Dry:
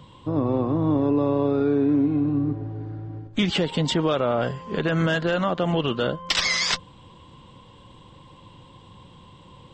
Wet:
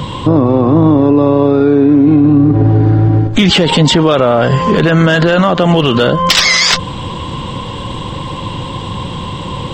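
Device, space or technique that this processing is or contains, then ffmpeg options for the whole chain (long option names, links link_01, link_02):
loud club master: -filter_complex "[0:a]asettb=1/sr,asplit=3[link_01][link_02][link_03];[link_01]atrim=end=5.434[link_04];[link_02]atrim=start=5.43:end=6.43,asetpts=PTS-STARTPTS,afade=type=in:duration=0.004:curve=qsin,afade=type=out:start_time=0.996:duration=0.004:curve=qsin,highshelf=frequency=3200:gain=3[link_05];[link_03]atrim=start=6.426[link_06];[link_04][link_05]acrossfade=duration=0.004:curve1=hsin:curve2=qsin[link_07];[link_07][link_06]acrossfade=duration=0.004:curve1=qsin:curve2=hsin,acompressor=threshold=-26dB:ratio=1.5,asoftclip=type=hard:threshold=-17dB,alimiter=level_in=27.5dB:limit=-1dB:release=50:level=0:latency=1,volume=-1dB"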